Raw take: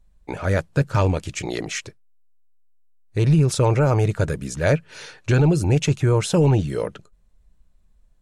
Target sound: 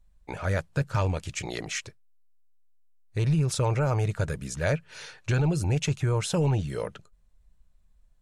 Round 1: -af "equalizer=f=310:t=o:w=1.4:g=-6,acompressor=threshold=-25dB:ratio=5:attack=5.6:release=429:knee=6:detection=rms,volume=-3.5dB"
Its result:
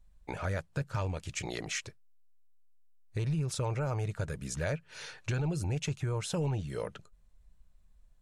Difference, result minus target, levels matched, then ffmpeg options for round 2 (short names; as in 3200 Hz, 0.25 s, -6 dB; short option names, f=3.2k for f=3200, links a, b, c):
compressor: peak gain reduction +8 dB
-af "equalizer=f=310:t=o:w=1.4:g=-6,acompressor=threshold=-14dB:ratio=5:attack=5.6:release=429:knee=6:detection=rms,volume=-3.5dB"